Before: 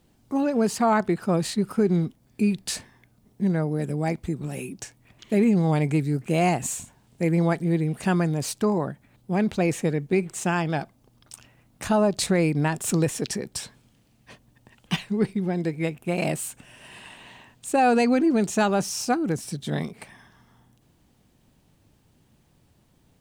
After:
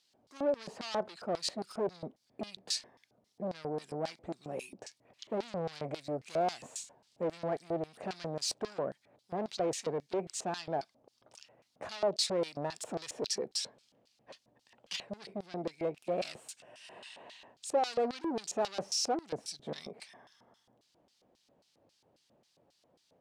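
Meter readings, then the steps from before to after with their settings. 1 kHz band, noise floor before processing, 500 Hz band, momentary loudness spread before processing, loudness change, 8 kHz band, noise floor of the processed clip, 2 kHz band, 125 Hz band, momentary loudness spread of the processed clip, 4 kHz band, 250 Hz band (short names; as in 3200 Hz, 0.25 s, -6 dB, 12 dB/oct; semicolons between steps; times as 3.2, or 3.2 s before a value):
-10.5 dB, -62 dBFS, -8.5 dB, 13 LU, -12.0 dB, -8.5 dB, -74 dBFS, -16.0 dB, -21.5 dB, 16 LU, -2.5 dB, -18.5 dB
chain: soft clip -26.5 dBFS, distortion -7 dB; LFO band-pass square 3.7 Hz 580–4700 Hz; gain +5 dB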